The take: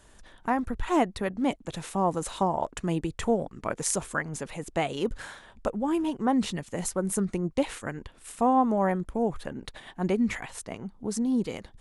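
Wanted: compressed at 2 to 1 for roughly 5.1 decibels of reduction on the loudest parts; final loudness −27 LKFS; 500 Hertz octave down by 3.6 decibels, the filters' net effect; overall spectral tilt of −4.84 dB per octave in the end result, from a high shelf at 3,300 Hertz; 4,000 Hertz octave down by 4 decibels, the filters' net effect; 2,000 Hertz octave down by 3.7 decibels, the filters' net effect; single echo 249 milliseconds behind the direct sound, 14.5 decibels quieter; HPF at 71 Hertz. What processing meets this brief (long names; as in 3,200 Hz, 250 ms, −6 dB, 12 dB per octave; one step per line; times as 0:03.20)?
high-pass filter 71 Hz
parametric band 500 Hz −4.5 dB
parametric band 2,000 Hz −4 dB
high-shelf EQ 3,300 Hz +4 dB
parametric band 4,000 Hz −7 dB
downward compressor 2 to 1, threshold −30 dBFS
single-tap delay 249 ms −14.5 dB
level +7 dB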